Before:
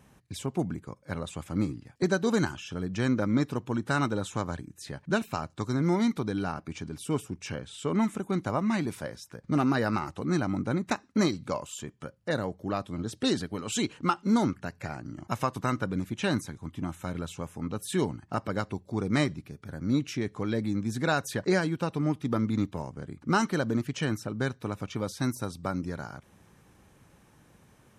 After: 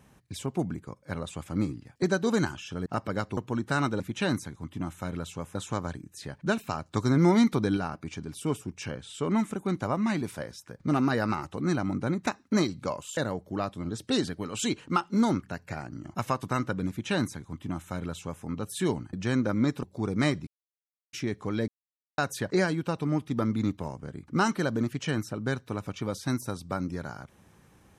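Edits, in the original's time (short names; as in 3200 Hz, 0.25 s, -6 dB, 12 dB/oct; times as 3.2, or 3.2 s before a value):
2.86–3.56 swap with 18.26–18.77
5.55–6.41 gain +4.5 dB
11.81–12.3 cut
16.02–17.57 copy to 4.19
19.41–20.07 mute
20.62–21.12 mute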